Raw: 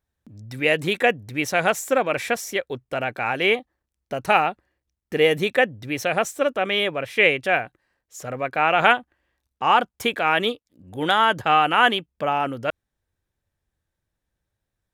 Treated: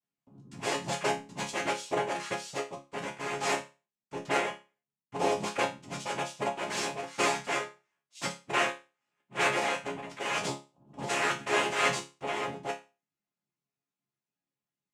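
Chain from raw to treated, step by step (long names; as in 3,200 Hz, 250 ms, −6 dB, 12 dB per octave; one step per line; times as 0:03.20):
0:04.26–0:05.29: low-pass filter 2,700 Hz
0:08.21–0:10.11: reverse
cochlear-implant simulation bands 4
resonators tuned to a chord C#3 major, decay 0.29 s
level +4 dB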